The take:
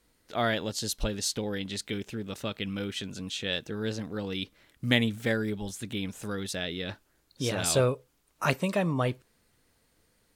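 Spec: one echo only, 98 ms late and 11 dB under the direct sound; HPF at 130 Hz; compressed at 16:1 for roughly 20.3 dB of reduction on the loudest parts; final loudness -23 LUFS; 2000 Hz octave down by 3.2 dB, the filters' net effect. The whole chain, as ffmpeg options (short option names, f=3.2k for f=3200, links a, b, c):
-af "highpass=130,equalizer=f=2k:t=o:g=-4,acompressor=threshold=-40dB:ratio=16,aecho=1:1:98:0.282,volume=21.5dB"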